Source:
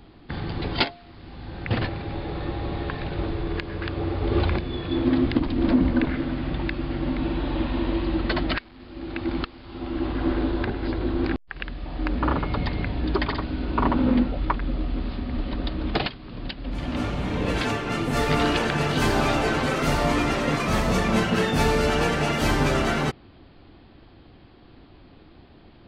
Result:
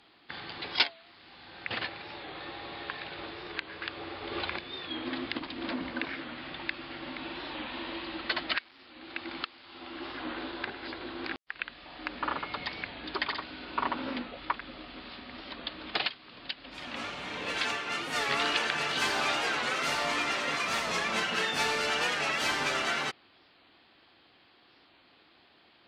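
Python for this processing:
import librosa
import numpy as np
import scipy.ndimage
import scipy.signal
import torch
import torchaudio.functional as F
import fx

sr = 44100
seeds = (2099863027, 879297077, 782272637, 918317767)

y = fx.bandpass_q(x, sr, hz=3500.0, q=0.51)
y = fx.record_warp(y, sr, rpm=45.0, depth_cents=100.0)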